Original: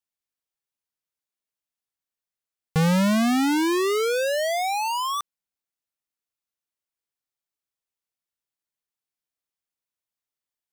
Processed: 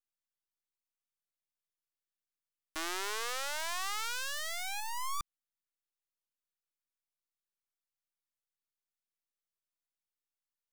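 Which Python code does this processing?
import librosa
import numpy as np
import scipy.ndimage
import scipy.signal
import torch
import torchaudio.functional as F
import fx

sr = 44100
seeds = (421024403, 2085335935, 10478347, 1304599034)

y = scipy.signal.sosfilt(scipy.signal.cheby1(3, 1.0, 1100.0, 'highpass', fs=sr, output='sos'), x)
y = np.maximum(y, 0.0)
y = fx.peak_eq(y, sr, hz=2600.0, db=-8.0, octaves=1.6, at=(4.8, 5.2))
y = F.gain(torch.from_numpy(y), -2.5).numpy()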